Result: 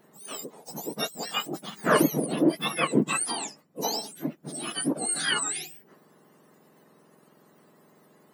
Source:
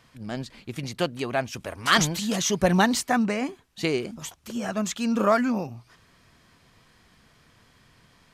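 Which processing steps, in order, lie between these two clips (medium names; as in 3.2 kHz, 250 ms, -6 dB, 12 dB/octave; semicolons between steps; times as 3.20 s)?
spectrum inverted on a logarithmic axis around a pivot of 1.4 kHz; 2.26–3.02 s: high-order bell 7.4 kHz -13 dB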